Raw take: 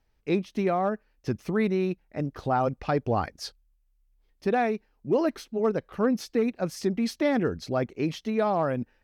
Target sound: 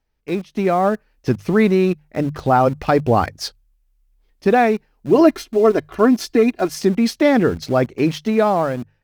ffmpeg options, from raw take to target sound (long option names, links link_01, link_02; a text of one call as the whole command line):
ffmpeg -i in.wav -filter_complex "[0:a]dynaudnorm=framelen=140:gausssize=9:maxgain=9dB,asettb=1/sr,asplit=3[link_01][link_02][link_03];[link_01]atrim=end=5.154[link_04];[link_02]atrim=start=5.15:end=6.78,asetpts=PTS-STARTPTS,afade=type=in:duration=0.004:curve=qsin,afade=type=out:start_time=1.626:duration=0.004:curve=qsin,aecho=1:1:2.9:0.69,atrim=end_sample=71883[link_05];[link_03]atrim=start=6.776[link_06];[link_04][link_05]acrossfade=duration=0.004:curve1=hsin:curve2=qsin[link_07];[link_07][link_06]acrossfade=duration=0.004:curve1=qsin:curve2=hsin,asplit=2[link_08][link_09];[link_09]aeval=exprs='val(0)*gte(abs(val(0)),0.0422)':channel_layout=same,volume=-5.5dB[link_10];[link_08][link_10]amix=inputs=2:normalize=0,bandreject=frequency=50:width_type=h:width=6,bandreject=frequency=100:width_type=h:width=6,bandreject=frequency=150:width_type=h:width=6,volume=-2dB" out.wav